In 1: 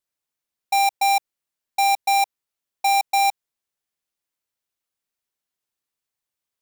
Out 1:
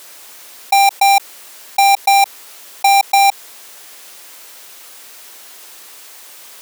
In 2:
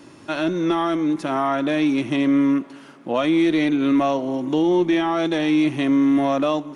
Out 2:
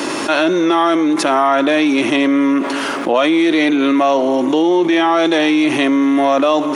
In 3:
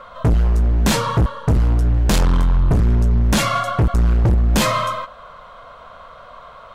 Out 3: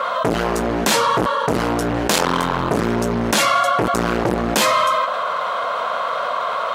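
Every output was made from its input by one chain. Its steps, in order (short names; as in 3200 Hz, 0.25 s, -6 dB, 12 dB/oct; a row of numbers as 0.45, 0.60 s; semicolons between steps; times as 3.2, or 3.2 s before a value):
HPF 360 Hz 12 dB/oct; fast leveller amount 70%; normalise peaks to -2 dBFS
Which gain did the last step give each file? +8.0, +7.0, +2.0 dB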